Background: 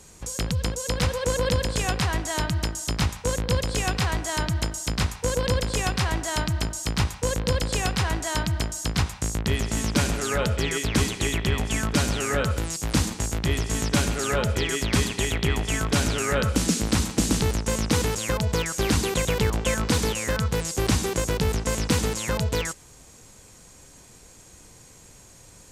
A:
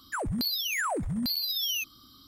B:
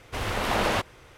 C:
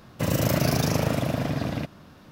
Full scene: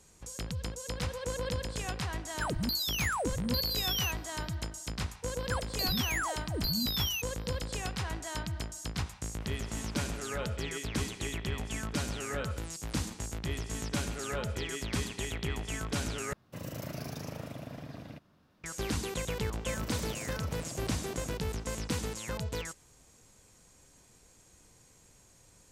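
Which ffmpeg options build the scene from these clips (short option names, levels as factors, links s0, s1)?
-filter_complex "[1:a]asplit=2[s0][s1];[3:a]asplit=2[s2][s3];[0:a]volume=0.282[s4];[s1]acrossover=split=560[s5][s6];[s5]adelay=220[s7];[s7][s6]amix=inputs=2:normalize=0[s8];[2:a]acompressor=threshold=0.00891:ratio=6:attack=3.2:release=140:knee=1:detection=peak[s9];[s3]acompressor=threshold=0.0251:ratio=6:attack=3.2:release=140:knee=1:detection=peak[s10];[s4]asplit=2[s11][s12];[s11]atrim=end=16.334[s13];[s2]atrim=end=2.31,asetpts=PTS-STARTPTS,volume=0.141[s14];[s12]atrim=start=18.636[s15];[s0]atrim=end=2.27,asetpts=PTS-STARTPTS,volume=0.708,afade=t=in:d=0.004:c=hsin,afade=t=out:st=2.266:d=0.004:c=hsin,adelay=2280[s16];[s8]atrim=end=2.27,asetpts=PTS-STARTPTS,volume=0.668,afade=t=in:d=0.004:c=hsin,afade=t=out:st=2.266:d=0.004:c=hsin,adelay=5380[s17];[s9]atrim=end=1.17,asetpts=PTS-STARTPTS,volume=0.299,afade=t=in:d=0.004:c=hsin,afade=t=out:st=1.166:d=0.004:c=hsin,adelay=9280[s18];[s10]atrim=end=2.31,asetpts=PTS-STARTPTS,volume=0.398,afade=t=in:d=0.004:c=hsin,afade=t=out:st=2.306:d=0.004:c=hsin,adelay=19490[s19];[s13][s14]acrossfade=d=0.004:c1=hsin:c2=hsin[s20];[s20][s15]acrossfade=d=0.004:c1=hsin:c2=hsin[s21];[s21][s16][s17][s18][s19]amix=inputs=5:normalize=0"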